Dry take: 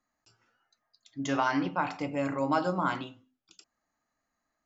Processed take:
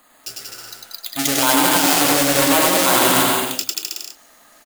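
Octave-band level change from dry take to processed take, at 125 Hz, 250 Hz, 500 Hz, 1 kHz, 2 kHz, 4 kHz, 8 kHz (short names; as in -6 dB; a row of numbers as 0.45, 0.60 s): +8.5 dB, +11.5 dB, +13.5 dB, +12.0 dB, +16.0 dB, +26.5 dB, n/a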